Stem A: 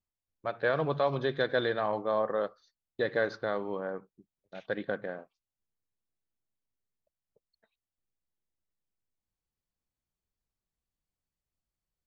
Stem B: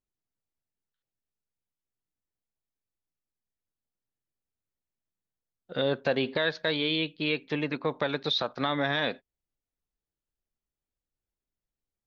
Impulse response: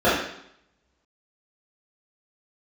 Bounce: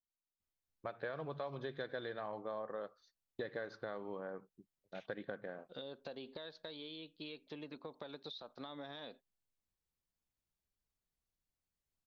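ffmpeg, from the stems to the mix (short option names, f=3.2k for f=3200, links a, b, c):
-filter_complex "[0:a]adelay=400,volume=-2.5dB[a];[1:a]equalizer=f=125:t=o:w=1:g=-6,equalizer=f=2k:t=o:w=1:g=-8,equalizer=f=4k:t=o:w=1:g=7,acompressor=threshold=-29dB:ratio=6,adynamicequalizer=threshold=0.00447:dfrequency=1700:dqfactor=0.7:tfrequency=1700:tqfactor=0.7:attack=5:release=100:ratio=0.375:range=2.5:mode=cutabove:tftype=highshelf,volume=-13.5dB[b];[a][b]amix=inputs=2:normalize=0,acompressor=threshold=-41dB:ratio=4"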